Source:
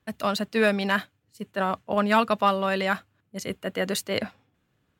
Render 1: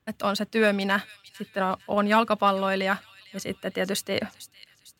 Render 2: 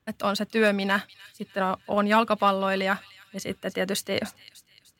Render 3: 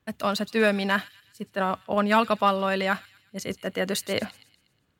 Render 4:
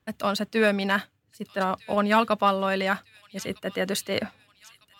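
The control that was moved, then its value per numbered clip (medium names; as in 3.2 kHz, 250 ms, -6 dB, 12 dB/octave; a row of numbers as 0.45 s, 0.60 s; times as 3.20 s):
feedback echo behind a high-pass, time: 453 ms, 300 ms, 121 ms, 1254 ms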